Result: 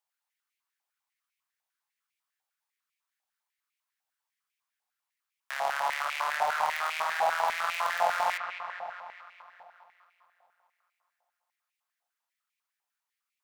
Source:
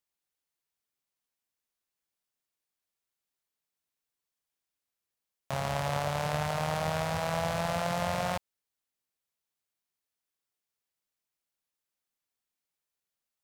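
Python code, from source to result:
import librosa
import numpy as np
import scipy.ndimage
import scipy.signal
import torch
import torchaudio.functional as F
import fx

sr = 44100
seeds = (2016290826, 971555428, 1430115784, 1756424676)

y = fx.tracing_dist(x, sr, depth_ms=0.091)
y = fx.echo_wet_lowpass(y, sr, ms=209, feedback_pct=65, hz=2800.0, wet_db=-6.0)
y = fx.filter_held_highpass(y, sr, hz=10.0, low_hz=790.0, high_hz=2300.0)
y = y * librosa.db_to_amplitude(-1.5)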